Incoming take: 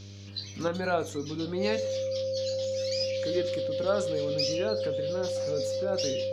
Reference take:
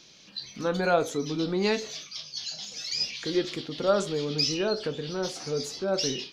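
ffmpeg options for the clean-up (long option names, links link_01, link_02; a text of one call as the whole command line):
ffmpeg -i in.wav -af "bandreject=frequency=99.6:width_type=h:width=4,bandreject=frequency=199.2:width_type=h:width=4,bandreject=frequency=298.8:width_type=h:width=4,bandreject=frequency=398.4:width_type=h:width=4,bandreject=frequency=498:width_type=h:width=4,bandreject=frequency=597.6:width_type=h:width=4,bandreject=frequency=530:width=30,asetnsamples=nb_out_samples=441:pad=0,asendcmd='0.68 volume volume 4.5dB',volume=0dB" out.wav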